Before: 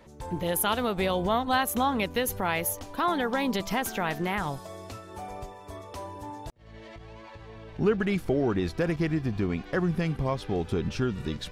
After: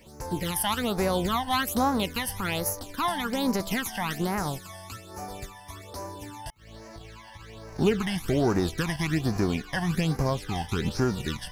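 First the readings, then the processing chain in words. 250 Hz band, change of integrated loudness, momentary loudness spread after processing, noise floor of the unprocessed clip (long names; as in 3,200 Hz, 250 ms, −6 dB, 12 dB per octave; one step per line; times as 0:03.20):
+1.0 dB, +0.5 dB, 17 LU, −47 dBFS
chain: spectral envelope flattened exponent 0.6
hum removal 433.8 Hz, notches 7
all-pass phaser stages 12, 1.2 Hz, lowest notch 400–3,300 Hz
level +2 dB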